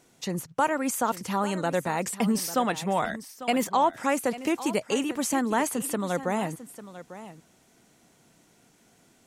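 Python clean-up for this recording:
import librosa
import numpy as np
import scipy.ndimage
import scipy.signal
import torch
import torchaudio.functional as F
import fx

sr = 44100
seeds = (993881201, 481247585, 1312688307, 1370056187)

y = fx.fix_echo_inverse(x, sr, delay_ms=847, level_db=-14.5)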